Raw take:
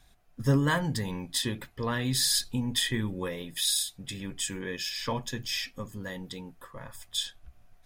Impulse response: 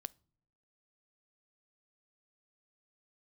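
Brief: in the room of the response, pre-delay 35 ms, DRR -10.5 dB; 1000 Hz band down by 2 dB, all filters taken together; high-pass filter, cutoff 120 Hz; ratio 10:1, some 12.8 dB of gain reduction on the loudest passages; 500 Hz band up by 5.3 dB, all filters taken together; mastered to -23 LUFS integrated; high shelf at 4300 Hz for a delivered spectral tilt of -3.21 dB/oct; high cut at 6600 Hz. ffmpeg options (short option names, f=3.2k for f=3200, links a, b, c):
-filter_complex "[0:a]highpass=120,lowpass=6.6k,equalizer=f=500:t=o:g=7,equalizer=f=1k:t=o:g=-4.5,highshelf=f=4.3k:g=9,acompressor=threshold=-32dB:ratio=10,asplit=2[a][b];[1:a]atrim=start_sample=2205,adelay=35[c];[b][c]afir=irnorm=-1:irlink=0,volume=14.5dB[d];[a][d]amix=inputs=2:normalize=0,volume=2.5dB"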